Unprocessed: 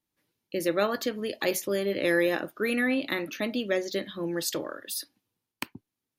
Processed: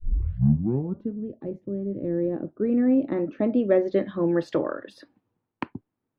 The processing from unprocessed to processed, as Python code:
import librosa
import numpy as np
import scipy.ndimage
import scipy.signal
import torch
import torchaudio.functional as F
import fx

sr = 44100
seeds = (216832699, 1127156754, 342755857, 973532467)

y = fx.tape_start_head(x, sr, length_s=1.17)
y = fx.filter_sweep_lowpass(y, sr, from_hz=190.0, to_hz=1200.0, start_s=1.92, end_s=4.14, q=0.71)
y = F.gain(torch.from_numpy(y), 8.5).numpy()